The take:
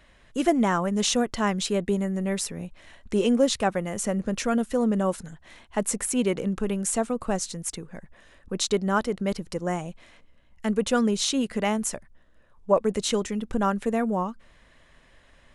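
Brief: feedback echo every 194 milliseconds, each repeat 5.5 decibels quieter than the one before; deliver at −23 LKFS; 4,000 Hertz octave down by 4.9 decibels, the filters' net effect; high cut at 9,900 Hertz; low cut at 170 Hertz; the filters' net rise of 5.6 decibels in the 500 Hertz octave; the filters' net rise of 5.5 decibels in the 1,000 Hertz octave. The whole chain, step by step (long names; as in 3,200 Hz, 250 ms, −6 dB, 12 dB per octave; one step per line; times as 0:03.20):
high-pass filter 170 Hz
low-pass filter 9,900 Hz
parametric band 500 Hz +5.5 dB
parametric band 1,000 Hz +5.5 dB
parametric band 4,000 Hz −6.5 dB
repeating echo 194 ms, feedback 53%, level −5.5 dB
level −1 dB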